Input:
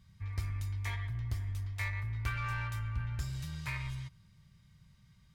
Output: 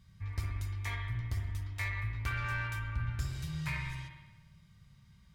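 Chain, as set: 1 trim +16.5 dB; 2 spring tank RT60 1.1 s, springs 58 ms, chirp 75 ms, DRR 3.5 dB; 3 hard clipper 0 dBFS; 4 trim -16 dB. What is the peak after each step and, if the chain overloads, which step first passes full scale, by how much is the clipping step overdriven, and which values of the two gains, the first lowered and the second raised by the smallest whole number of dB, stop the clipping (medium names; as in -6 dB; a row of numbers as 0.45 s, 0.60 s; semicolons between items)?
-4.5 dBFS, -5.5 dBFS, -5.5 dBFS, -21.5 dBFS; nothing clips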